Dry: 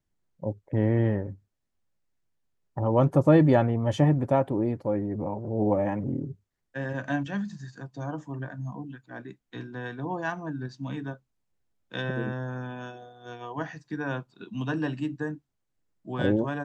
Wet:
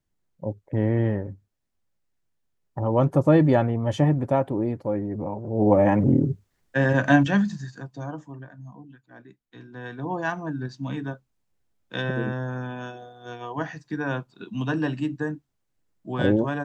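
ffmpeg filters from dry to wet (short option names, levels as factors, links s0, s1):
-af "volume=12.6,afade=t=in:st=5.49:d=0.62:silence=0.298538,afade=t=out:st=7.25:d=0.45:silence=0.421697,afade=t=out:st=7.7:d=0.76:silence=0.281838,afade=t=in:st=9.6:d=0.58:silence=0.298538"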